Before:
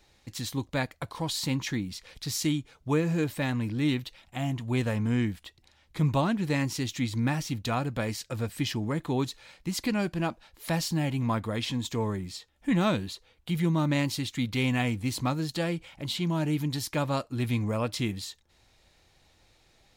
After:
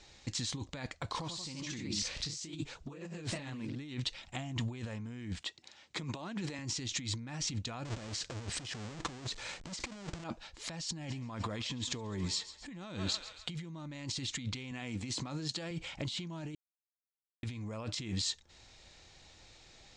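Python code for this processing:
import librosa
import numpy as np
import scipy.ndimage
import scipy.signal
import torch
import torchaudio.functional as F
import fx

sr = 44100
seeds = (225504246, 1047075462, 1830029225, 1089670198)

y = fx.echo_pitch(x, sr, ms=95, semitones=1, count=2, db_per_echo=-3.0, at=(1.1, 3.81))
y = fx.highpass(y, sr, hz=200.0, slope=12, at=(5.41, 6.59))
y = fx.halfwave_hold(y, sr, at=(7.85, 10.24))
y = fx.echo_thinned(y, sr, ms=137, feedback_pct=57, hz=800.0, wet_db=-16.0, at=(11.02, 13.7), fade=0.02)
y = fx.highpass(y, sr, hz=130.0, slope=12, at=(14.71, 15.71))
y = fx.edit(y, sr, fx.silence(start_s=16.55, length_s=0.88), tone=tone)
y = scipy.signal.sosfilt(scipy.signal.butter(8, 7900.0, 'lowpass', fs=sr, output='sos'), y)
y = fx.high_shelf(y, sr, hz=3200.0, db=6.5)
y = fx.over_compress(y, sr, threshold_db=-36.0, ratio=-1.0)
y = F.gain(torch.from_numpy(y), -4.5).numpy()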